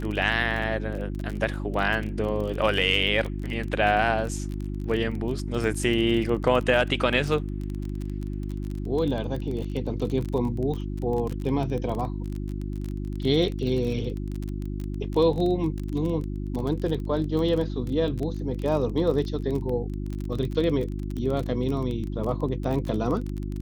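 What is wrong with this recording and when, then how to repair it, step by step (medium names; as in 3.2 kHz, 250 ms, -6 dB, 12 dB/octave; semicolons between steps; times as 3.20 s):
crackle 25 per s -29 dBFS
hum 50 Hz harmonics 7 -31 dBFS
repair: de-click; de-hum 50 Hz, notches 7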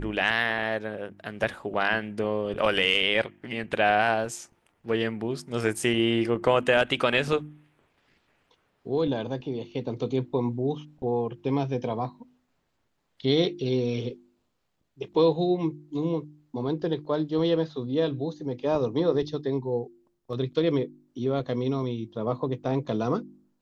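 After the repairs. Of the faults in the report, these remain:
nothing left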